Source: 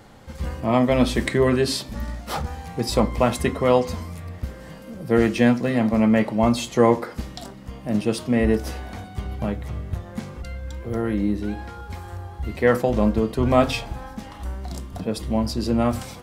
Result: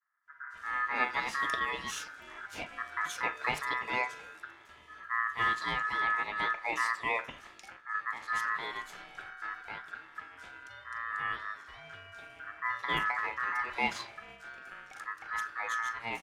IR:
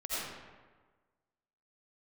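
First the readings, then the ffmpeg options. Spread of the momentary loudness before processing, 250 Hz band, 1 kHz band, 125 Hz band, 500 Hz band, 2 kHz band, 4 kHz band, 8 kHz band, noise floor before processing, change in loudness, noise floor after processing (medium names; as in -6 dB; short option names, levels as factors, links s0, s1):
16 LU, -29.0 dB, -5.0 dB, -28.0 dB, -24.0 dB, +1.0 dB, -9.0 dB, -11.0 dB, -41 dBFS, -11.0 dB, -55 dBFS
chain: -filter_complex "[0:a]agate=range=0.0224:threshold=0.0178:ratio=3:detection=peak,highpass=f=160:p=1,acrossover=split=470|3400[s0][s1][s2];[s2]adelay=220[s3];[s1]adelay=260[s4];[s0][s4][s3]amix=inputs=3:normalize=0,adynamicsmooth=sensitivity=4.5:basefreq=7900,aeval=exprs='val(0)*sin(2*PI*1500*n/s)':c=same,volume=0.422"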